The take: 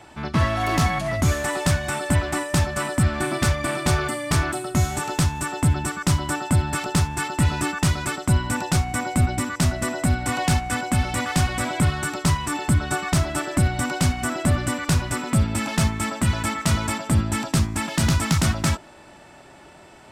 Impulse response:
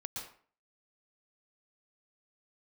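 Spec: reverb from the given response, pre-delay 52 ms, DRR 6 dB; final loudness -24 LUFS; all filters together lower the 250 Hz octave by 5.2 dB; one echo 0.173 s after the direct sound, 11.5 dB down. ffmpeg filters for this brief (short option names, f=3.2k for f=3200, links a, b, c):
-filter_complex "[0:a]equalizer=f=250:t=o:g=-8,aecho=1:1:173:0.266,asplit=2[a][b];[1:a]atrim=start_sample=2205,adelay=52[c];[b][c]afir=irnorm=-1:irlink=0,volume=-5dB[d];[a][d]amix=inputs=2:normalize=0,volume=-1dB"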